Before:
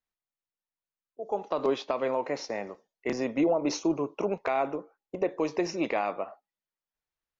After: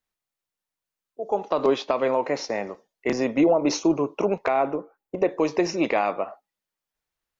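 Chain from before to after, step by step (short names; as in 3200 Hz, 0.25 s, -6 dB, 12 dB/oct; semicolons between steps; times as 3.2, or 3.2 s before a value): 4.48–5.18 bell 5400 Hz -7.5 dB 2.3 oct; gain +6 dB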